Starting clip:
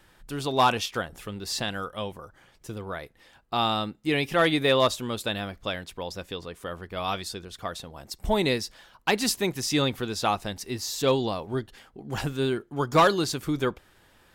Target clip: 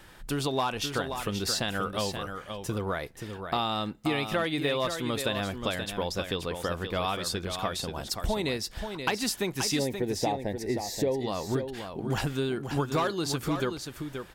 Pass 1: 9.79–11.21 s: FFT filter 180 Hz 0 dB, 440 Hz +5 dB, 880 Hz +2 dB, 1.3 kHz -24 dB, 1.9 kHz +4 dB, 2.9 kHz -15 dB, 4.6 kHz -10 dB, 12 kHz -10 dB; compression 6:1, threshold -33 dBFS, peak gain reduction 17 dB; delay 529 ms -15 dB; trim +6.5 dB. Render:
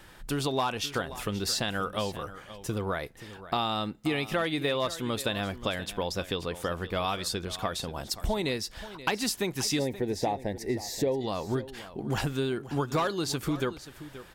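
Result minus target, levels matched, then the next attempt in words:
echo-to-direct -7.5 dB
9.79–11.21 s: FFT filter 180 Hz 0 dB, 440 Hz +5 dB, 880 Hz +2 dB, 1.3 kHz -24 dB, 1.9 kHz +4 dB, 2.9 kHz -15 dB, 4.6 kHz -10 dB, 12 kHz -10 dB; compression 6:1, threshold -33 dBFS, peak gain reduction 17 dB; delay 529 ms -7.5 dB; trim +6.5 dB

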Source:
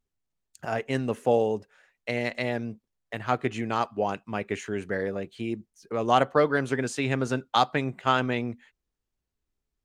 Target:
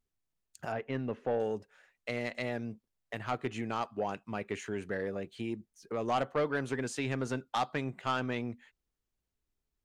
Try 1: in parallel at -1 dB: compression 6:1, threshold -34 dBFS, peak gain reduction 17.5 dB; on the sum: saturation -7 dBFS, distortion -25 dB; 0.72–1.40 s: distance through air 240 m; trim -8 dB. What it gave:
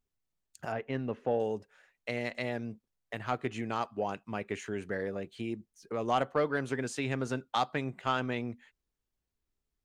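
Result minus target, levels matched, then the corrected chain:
saturation: distortion -10 dB
in parallel at -1 dB: compression 6:1, threshold -34 dBFS, peak gain reduction 17.5 dB; on the sum: saturation -14 dBFS, distortion -15 dB; 0.72–1.40 s: distance through air 240 m; trim -8 dB

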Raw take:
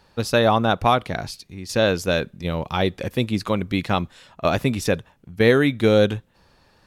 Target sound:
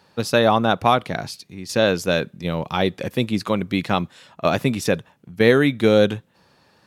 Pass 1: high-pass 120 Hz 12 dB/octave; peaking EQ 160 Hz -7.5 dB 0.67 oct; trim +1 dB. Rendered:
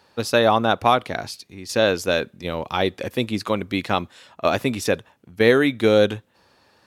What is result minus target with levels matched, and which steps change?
125 Hz band -3.5 dB
change: peaking EQ 160 Hz +2 dB 0.67 oct

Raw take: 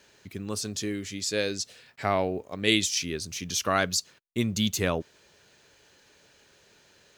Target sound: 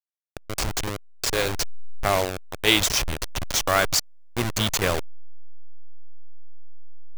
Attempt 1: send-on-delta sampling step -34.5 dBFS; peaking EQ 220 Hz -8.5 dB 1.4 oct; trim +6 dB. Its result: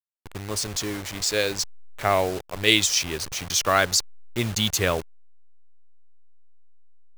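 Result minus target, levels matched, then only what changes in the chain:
send-on-delta sampling: distortion -13 dB
change: send-on-delta sampling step -23.5 dBFS

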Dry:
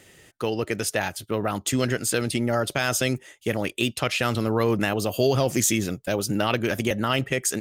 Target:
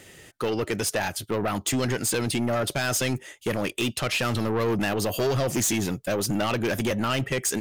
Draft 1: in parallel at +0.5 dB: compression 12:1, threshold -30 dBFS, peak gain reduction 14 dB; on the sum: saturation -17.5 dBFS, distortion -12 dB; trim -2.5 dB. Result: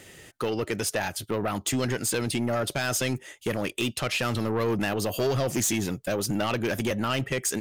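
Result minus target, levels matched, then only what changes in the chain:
compression: peak gain reduction +9 dB
change: compression 12:1, threshold -20 dBFS, peak gain reduction 5 dB

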